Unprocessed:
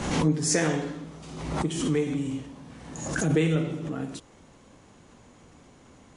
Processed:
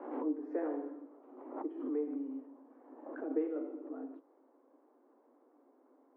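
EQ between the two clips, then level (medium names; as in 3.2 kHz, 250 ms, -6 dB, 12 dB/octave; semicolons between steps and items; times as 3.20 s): steep high-pass 260 Hz 96 dB/octave; Bessel low-pass 780 Hz, order 4; -8.0 dB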